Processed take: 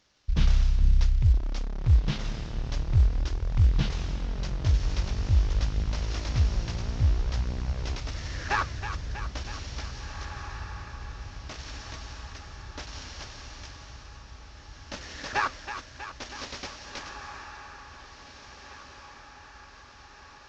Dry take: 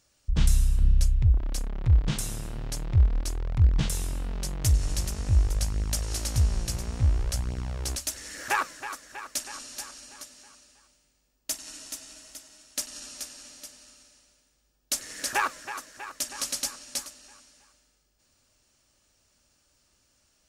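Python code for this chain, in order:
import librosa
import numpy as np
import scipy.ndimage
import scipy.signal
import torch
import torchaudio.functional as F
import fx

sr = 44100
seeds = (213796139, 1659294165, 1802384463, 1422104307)

y = fx.cvsd(x, sr, bps=32000)
y = fx.echo_diffused(y, sr, ms=1931, feedback_pct=59, wet_db=-10.0)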